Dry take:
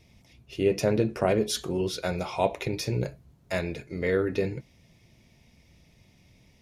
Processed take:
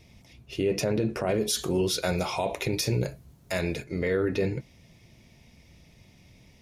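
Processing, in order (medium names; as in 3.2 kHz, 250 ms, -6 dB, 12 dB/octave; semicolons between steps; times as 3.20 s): 1.34–3.84 s: treble shelf 5.4 kHz +8.5 dB; peak limiter -20.5 dBFS, peak gain reduction 11 dB; trim +3.5 dB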